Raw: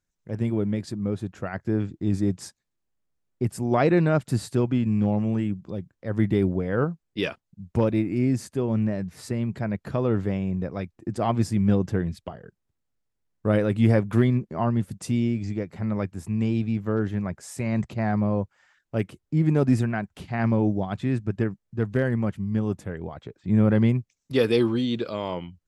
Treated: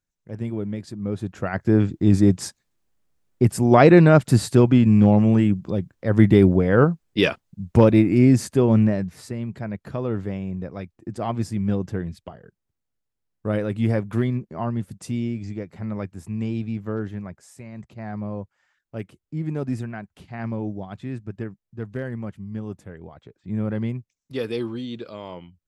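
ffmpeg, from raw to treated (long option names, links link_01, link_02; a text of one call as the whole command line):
ffmpeg -i in.wav -af "volume=15.5dB,afade=type=in:start_time=0.94:duration=0.88:silence=0.281838,afade=type=out:start_time=8.72:duration=0.56:silence=0.298538,afade=type=out:start_time=16.91:duration=0.81:silence=0.266073,afade=type=in:start_time=17.72:duration=0.54:silence=0.421697" out.wav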